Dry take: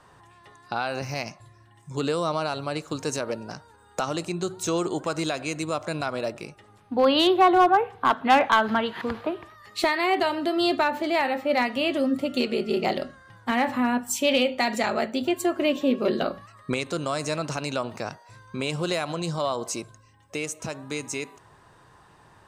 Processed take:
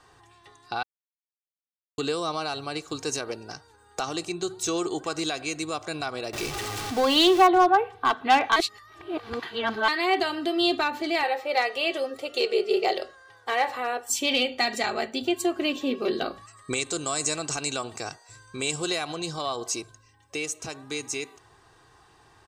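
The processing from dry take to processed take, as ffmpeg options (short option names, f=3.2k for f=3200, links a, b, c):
-filter_complex "[0:a]asettb=1/sr,asplit=3[a][b][c];[a]atrim=end=6.334[d];[b]atrim=start=6.33:end=7.47,asetpts=PTS-STARTPTS,afade=t=in:d=0.004:c=qsin,afade=t=out:st=1.136:d=0.004:c=qsin,aeval=exprs='val(0)+0.5*0.0531*sgn(val(0))':c=same[e];[c]atrim=start=7.466[f];[d][e]acrossfade=d=0.004:c1=hsin:c2=qsin[g];[g][f]acrossfade=d=0.004:c1=qsin:c2=hsin,asettb=1/sr,asplit=3[h][i][j];[h]atrim=end=11.234[k];[i]atrim=start=11.23:end=14.1,asetpts=PTS-STARTPTS,afade=t=in:d=0.004:c=qsin,afade=t=out:st=2.866:d=0.004:c=qsin,lowshelf=f=330:t=q:w=3:g=-10[l];[j]atrim=start=14.096[m];[k][l]acrossfade=d=0.004:c1=hsin:c2=qsin[n];[n][m]acrossfade=d=0.004:c1=qsin:c2=hsin,asettb=1/sr,asplit=3[o][p][q];[o]atrim=end=16.364[r];[p]atrim=start=16.36:end=18.87,asetpts=PTS-STARTPTS,afade=t=in:d=0.004:c=qsin,afade=t=out:st=2.506:d=0.004:c=qsin,equalizer=f=7.7k:t=o:w=0.38:g=14.5[s];[q]atrim=start=18.866[t];[r][s]acrossfade=d=0.004:c1=hsin:c2=qsin[u];[u][t]acrossfade=d=0.004:c1=qsin:c2=hsin,asplit=5[v][w][x][y][z];[v]atrim=end=0.83,asetpts=PTS-STARTPTS,afade=t=out:st=0.826:d=0.004:c=hsin[aa];[w]atrim=start=0.83:end=1.98,asetpts=PTS-STARTPTS,volume=0[ab];[x]atrim=start=1.98:end=8.562,asetpts=PTS-STARTPTS,afade=t=in:d=0.004:c=hsin[ac];[y]atrim=start=8.558:end=9.882,asetpts=PTS-STARTPTS,areverse[ad];[z]atrim=start=9.878[ae];[aa][ab][ac]concat=n=3:v=0:a=1[af];[af][ad]acrossfade=d=0.004:c1=hsin:c2=hsin[ag];[ag][ae]acrossfade=d=0.004:c1=hsin:c2=hsin,equalizer=f=4.9k:t=o:w=1.8:g=6.5,aecho=1:1:2.6:0.5,volume=-4dB"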